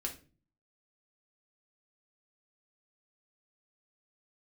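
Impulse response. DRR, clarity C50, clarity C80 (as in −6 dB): 0.0 dB, 11.0 dB, 17.5 dB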